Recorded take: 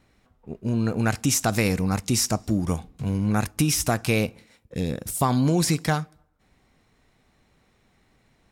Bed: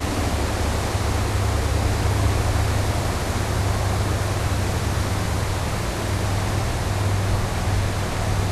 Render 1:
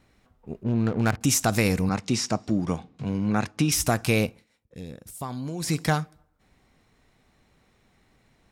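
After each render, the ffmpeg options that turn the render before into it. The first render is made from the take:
-filter_complex "[0:a]asettb=1/sr,asplit=3[a][b][c];[a]atrim=end=0.634[d];[b]atrim=start=0.63:end=1.21,asetpts=PTS-STARTPTS,afade=t=in:d=0.004:c=qsin,afade=t=out:st=0.576:d=0.004:c=qsin,adynamicsmooth=sensitivity=4.5:basefreq=510[e];[c]atrim=start=1.206[f];[d][e]acrossfade=d=0.004:c1=hsin:c2=qsin[g];[g][f]acrossfade=d=0.004:c1=qsin:c2=hsin,asettb=1/sr,asplit=3[h][i][j];[h]atrim=end=1.894[k];[i]atrim=start=1.89:end=3.72,asetpts=PTS-STARTPTS,afade=t=in:d=0.004:c=qsin,afade=t=out:st=1.826:d=0.004:c=qsin,highpass=130,lowpass=5.1k[l];[j]atrim=start=3.716[m];[k][l]acrossfade=d=0.004:c1=hsin:c2=qsin[n];[n][m]acrossfade=d=0.004:c1=qsin:c2=hsin,asplit=3[o][p][q];[o]atrim=end=4.45,asetpts=PTS-STARTPTS,afade=t=out:st=4.24:d=0.21:silence=0.251189[r];[p]atrim=start=4.45:end=5.59,asetpts=PTS-STARTPTS,volume=-12dB[s];[q]atrim=start=5.59,asetpts=PTS-STARTPTS,afade=t=in:d=0.21:silence=0.251189[t];[r][s][t]concat=n=3:v=0:a=1"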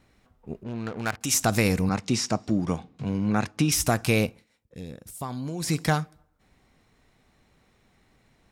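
-filter_complex "[0:a]asettb=1/sr,asplit=3[a][b][c];[a]atrim=end=0.644[d];[b]atrim=start=0.64:end=1.34,asetpts=PTS-STARTPTS,afade=t=in:d=0.004:c=qsin,afade=t=out:st=0.696:d=0.004:c=qsin,lowshelf=f=480:g=-11.5[e];[c]atrim=start=1.336[f];[d][e]acrossfade=d=0.004:c1=hsin:c2=qsin[g];[g][f]acrossfade=d=0.004:c1=qsin:c2=hsin"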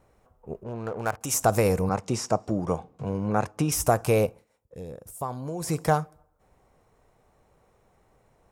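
-af "equalizer=f=250:t=o:w=1:g=-7,equalizer=f=500:t=o:w=1:g=7,equalizer=f=1k:t=o:w=1:g=4,equalizer=f=2k:t=o:w=1:g=-6,equalizer=f=4k:t=o:w=1:g=-10"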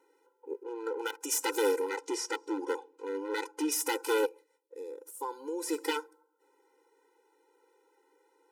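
-af "aeval=exprs='0.106*(abs(mod(val(0)/0.106+3,4)-2)-1)':c=same,afftfilt=real='re*eq(mod(floor(b*sr/1024/260),2),1)':imag='im*eq(mod(floor(b*sr/1024/260),2),1)':win_size=1024:overlap=0.75"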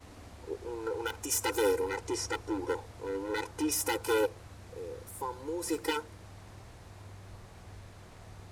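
-filter_complex "[1:a]volume=-27.5dB[a];[0:a][a]amix=inputs=2:normalize=0"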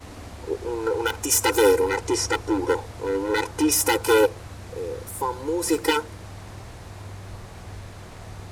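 -af "volume=10.5dB"

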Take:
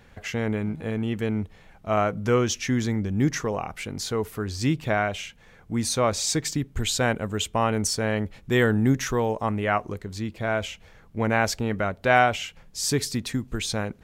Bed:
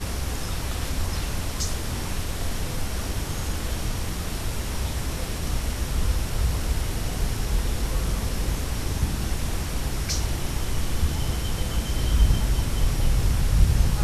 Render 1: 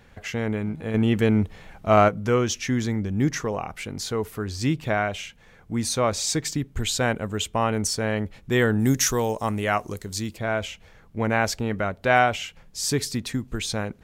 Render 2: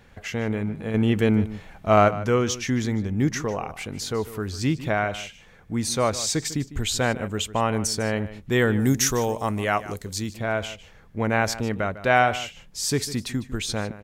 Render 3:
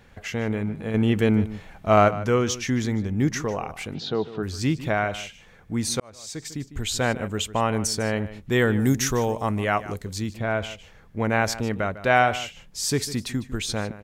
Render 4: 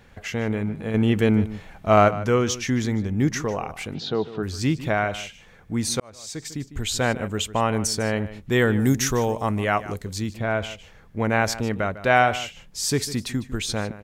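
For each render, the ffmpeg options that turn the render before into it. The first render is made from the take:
-filter_complex "[0:a]asettb=1/sr,asplit=3[a][b][c];[a]atrim=end=0.944[d];[b]atrim=start=0.94:end=2.09,asetpts=PTS-STARTPTS,afade=t=in:d=0.004:c=qsin,afade=t=out:st=1.146:d=0.004:c=qsin,acontrast=75[e];[c]atrim=start=2.086[f];[d][e]acrossfade=d=0.004:c1=hsin:c2=qsin[g];[g][f]acrossfade=d=0.004:c1=qsin:c2=hsin,asplit=3[h][i][j];[h]afade=t=out:st=8.79:d=0.02[k];[i]bass=f=250:g=0,treble=f=4k:g=14,afade=t=in:st=8.79:d=0.02,afade=t=out:st=10.36:d=0.02[l];[j]afade=t=in:st=10.36:d=0.02[m];[k][l][m]amix=inputs=3:normalize=0"
-filter_complex "[0:a]asplit=2[a][b];[b]adelay=151.6,volume=-15dB,highshelf=f=4k:g=-3.41[c];[a][c]amix=inputs=2:normalize=0"
-filter_complex "[0:a]asplit=3[a][b][c];[a]afade=t=out:st=3.93:d=0.02[d];[b]highpass=140,equalizer=f=160:t=q:w=4:g=10,equalizer=f=340:t=q:w=4:g=4,equalizer=f=730:t=q:w=4:g=6,equalizer=f=1.1k:t=q:w=4:g=-4,equalizer=f=2.1k:t=q:w=4:g=-9,equalizer=f=3.7k:t=q:w=4:g=8,lowpass=f=4.2k:w=0.5412,lowpass=f=4.2k:w=1.3066,afade=t=in:st=3.93:d=0.02,afade=t=out:st=4.42:d=0.02[e];[c]afade=t=in:st=4.42:d=0.02[f];[d][e][f]amix=inputs=3:normalize=0,asettb=1/sr,asplit=3[g][h][i];[g]atrim=end=8.964[j];[h]atrim=start=8.96:end=10.71,asetpts=PTS-STARTPTS,afade=t=in:d=0.004:c=qsin,afade=t=out:st=1.746:d=0.004:c=qsin,bass=f=250:g=2,treble=f=4k:g=-5[k];[i]atrim=start=10.706[l];[j][k]acrossfade=d=0.004:c1=hsin:c2=qsin[m];[m][l]acrossfade=d=0.004:c1=qsin:c2=hsin,asplit=2[n][o];[n]atrim=end=6,asetpts=PTS-STARTPTS,afade=t=out:st=5.996:d=0.004:c=hsin[p];[o]atrim=start=6,asetpts=PTS-STARTPTS,afade=t=in:d=1.1[q];[p][q]concat=n=2:v=0:a=1"
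-af "volume=1dB"

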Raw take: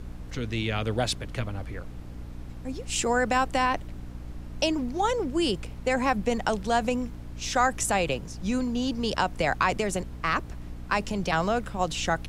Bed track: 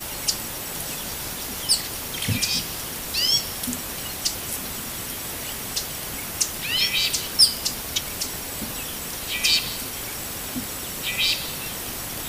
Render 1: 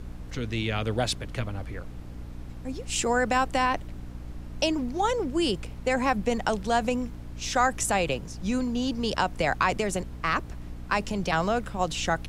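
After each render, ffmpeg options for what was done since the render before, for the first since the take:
-af anull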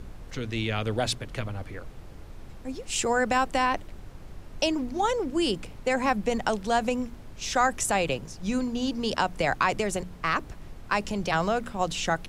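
-af "bandreject=f=60:t=h:w=4,bandreject=f=120:t=h:w=4,bandreject=f=180:t=h:w=4,bandreject=f=240:t=h:w=4,bandreject=f=300:t=h:w=4"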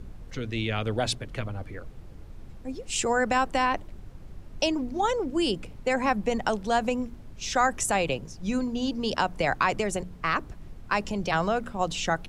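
-af "afftdn=nr=6:nf=-44"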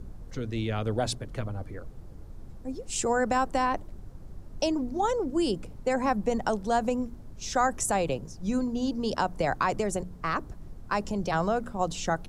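-af "equalizer=f=2.6k:t=o:w=1.4:g=-9"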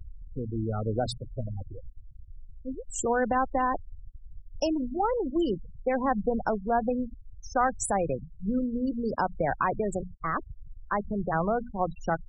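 -af "afftfilt=real='re*gte(hypot(re,im),0.0562)':imag='im*gte(hypot(re,im),0.0562)':win_size=1024:overlap=0.75"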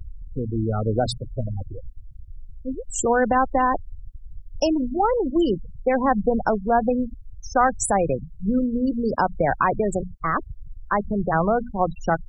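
-af "volume=6.5dB"

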